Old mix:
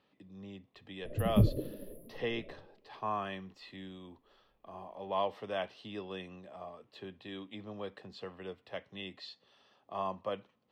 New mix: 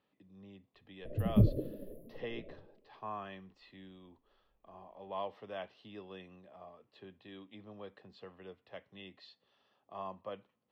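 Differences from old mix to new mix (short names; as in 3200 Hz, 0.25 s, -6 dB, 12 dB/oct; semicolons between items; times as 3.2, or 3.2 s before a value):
speech -6.5 dB; master: add bell 10000 Hz -11 dB 1.3 oct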